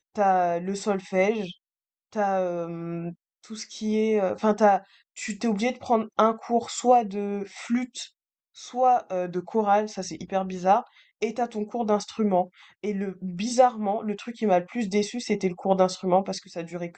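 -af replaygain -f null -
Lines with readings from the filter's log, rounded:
track_gain = +4.5 dB
track_peak = 0.348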